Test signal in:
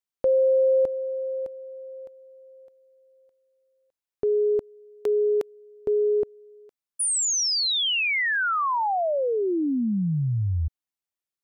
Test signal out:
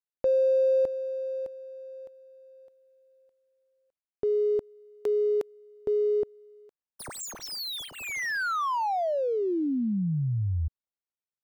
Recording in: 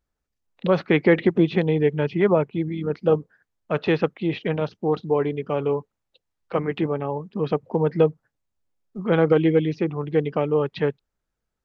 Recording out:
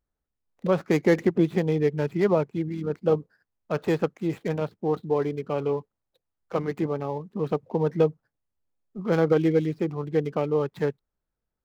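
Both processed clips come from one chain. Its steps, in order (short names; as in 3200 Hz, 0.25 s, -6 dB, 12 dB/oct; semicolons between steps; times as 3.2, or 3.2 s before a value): median filter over 15 samples; gain -3 dB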